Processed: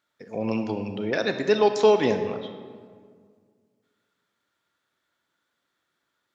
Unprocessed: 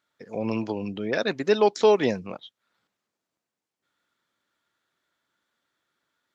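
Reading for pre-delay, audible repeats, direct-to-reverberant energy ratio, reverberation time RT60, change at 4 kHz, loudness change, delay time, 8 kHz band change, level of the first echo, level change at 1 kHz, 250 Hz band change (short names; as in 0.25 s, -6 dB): 28 ms, none, 7.0 dB, 1.9 s, +0.5 dB, +0.5 dB, none, n/a, none, +0.5 dB, +1.0 dB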